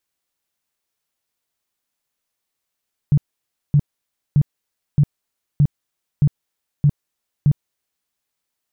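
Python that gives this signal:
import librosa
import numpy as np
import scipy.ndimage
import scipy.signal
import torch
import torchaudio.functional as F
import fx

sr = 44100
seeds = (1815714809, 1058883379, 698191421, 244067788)

y = fx.tone_burst(sr, hz=145.0, cycles=8, every_s=0.62, bursts=8, level_db=-9.5)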